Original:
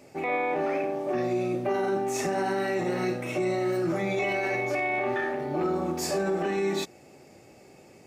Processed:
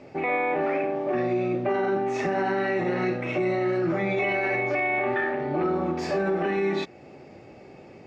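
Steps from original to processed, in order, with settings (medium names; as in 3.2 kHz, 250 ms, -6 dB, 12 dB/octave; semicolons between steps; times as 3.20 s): dynamic bell 2 kHz, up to +4 dB, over -44 dBFS, Q 1.1; in parallel at +1 dB: compression, threshold -36 dBFS, peak gain reduction 13 dB; on the sum: distance through air 210 m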